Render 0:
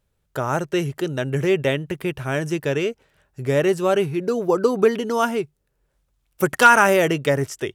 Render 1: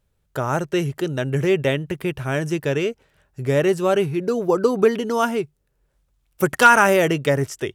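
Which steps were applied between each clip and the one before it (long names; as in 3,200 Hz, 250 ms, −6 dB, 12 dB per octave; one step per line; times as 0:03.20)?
low-shelf EQ 160 Hz +3 dB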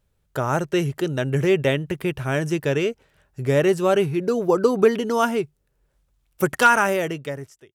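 fade-out on the ending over 1.54 s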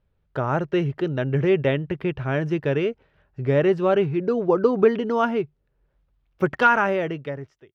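high-frequency loss of the air 280 metres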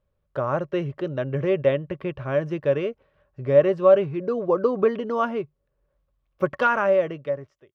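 hollow resonant body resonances 570/1,100 Hz, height 13 dB, ringing for 50 ms
level −5 dB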